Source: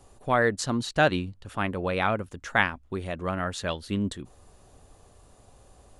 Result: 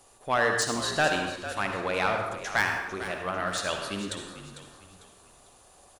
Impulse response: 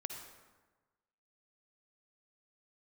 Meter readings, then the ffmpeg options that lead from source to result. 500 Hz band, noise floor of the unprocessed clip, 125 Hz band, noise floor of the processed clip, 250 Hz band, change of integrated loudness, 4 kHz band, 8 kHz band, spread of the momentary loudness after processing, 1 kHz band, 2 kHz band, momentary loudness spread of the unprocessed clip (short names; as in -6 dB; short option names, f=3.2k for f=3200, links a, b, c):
-2.0 dB, -57 dBFS, -7.5 dB, -57 dBFS, -6.0 dB, -0.5 dB, +3.0 dB, +5.5 dB, 12 LU, 0.0 dB, +0.5 dB, 9 LU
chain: -filter_complex "[0:a]asplit=2[a][b];[b]highpass=f=720:p=1,volume=15dB,asoftclip=type=tanh:threshold=-4.5dB[c];[a][c]amix=inputs=2:normalize=0,lowpass=f=2.5k:p=1,volume=-6dB,aemphasis=mode=production:type=75fm,asplit=5[d][e][f][g][h];[e]adelay=449,afreqshift=-56,volume=-12.5dB[i];[f]adelay=898,afreqshift=-112,volume=-21.1dB[j];[g]adelay=1347,afreqshift=-168,volume=-29.8dB[k];[h]adelay=1796,afreqshift=-224,volume=-38.4dB[l];[d][i][j][k][l]amix=inputs=5:normalize=0[m];[1:a]atrim=start_sample=2205,afade=t=out:st=0.35:d=0.01,atrim=end_sample=15876[n];[m][n]afir=irnorm=-1:irlink=0,volume=-4.5dB"